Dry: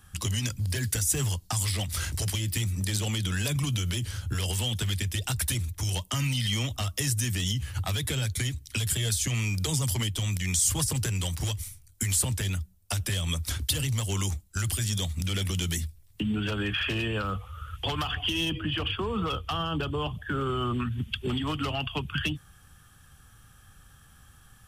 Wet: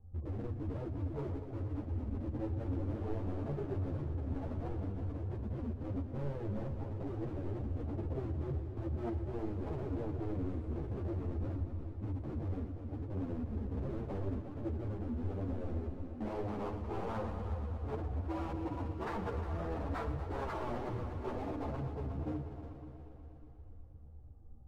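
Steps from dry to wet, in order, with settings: inverse Chebyshev low-pass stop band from 1900 Hz, stop band 60 dB; notches 50/100/150/200/250/300/350/400 Hz; harmonic-percussive split percussive -14 dB; bell 160 Hz -8.5 dB 0.99 oct; in parallel at -3 dB: compressor 12:1, threshold -48 dBFS, peak gain reduction 19 dB; on the sum: wavefolder -35.5 dBFS; on a send: multi-head echo 0.12 s, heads all three, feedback 63%, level -13 dB; on the sum: ensemble effect; gain +4.5 dB

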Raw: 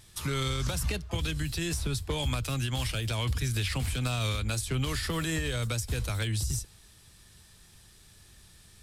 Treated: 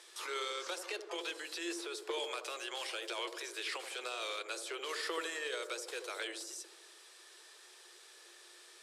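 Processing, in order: bell 13000 Hz +6.5 dB 1.6 oct; limiter -29 dBFS, peak gain reduction 12 dB; rippled Chebyshev high-pass 340 Hz, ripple 3 dB; air absorption 67 m; dark delay 79 ms, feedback 58%, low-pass 730 Hz, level -5 dB; gain +4.5 dB

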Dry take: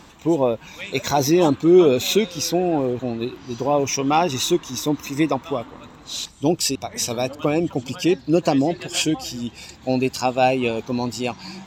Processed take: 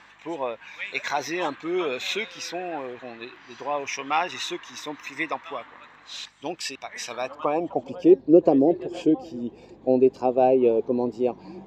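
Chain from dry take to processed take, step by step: hum 50 Hz, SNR 23 dB; band-pass sweep 1700 Hz -> 420 Hz, 7.06–8.12; bell 1400 Hz -5 dB 0.44 oct; gain +6.5 dB

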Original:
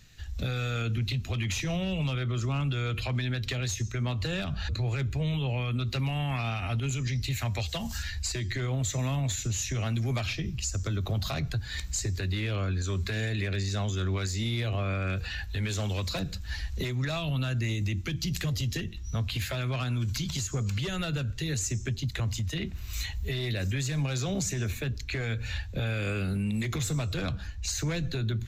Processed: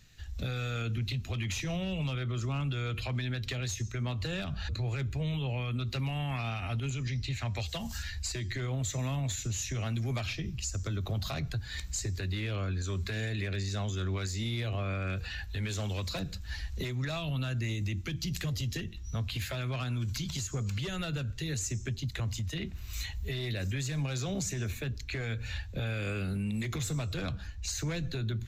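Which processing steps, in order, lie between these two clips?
6.9–7.56 LPF 6000 Hz 12 dB/oct; gain -3.5 dB

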